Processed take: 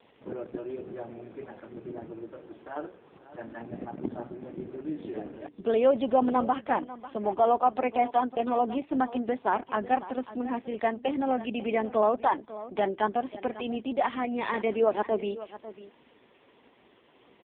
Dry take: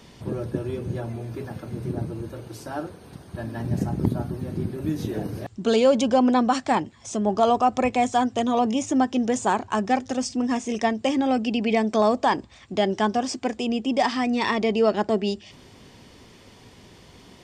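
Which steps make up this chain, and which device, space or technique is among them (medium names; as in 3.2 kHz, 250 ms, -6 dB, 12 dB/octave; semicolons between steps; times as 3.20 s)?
satellite phone (band-pass 320–3200 Hz; delay 546 ms -15.5 dB; trim -2.5 dB; AMR-NB 4.75 kbps 8 kHz)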